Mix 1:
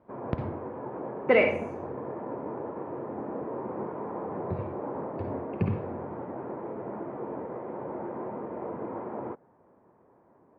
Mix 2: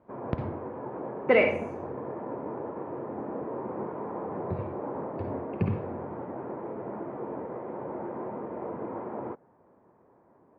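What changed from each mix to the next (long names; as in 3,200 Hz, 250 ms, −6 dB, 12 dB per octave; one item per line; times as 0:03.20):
nothing changed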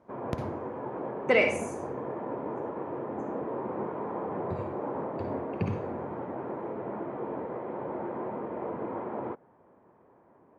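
speech −3.5 dB
master: remove high-frequency loss of the air 360 metres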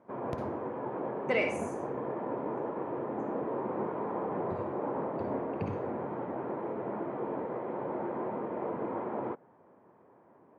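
speech −6.5 dB
background: add high-pass filter 98 Hz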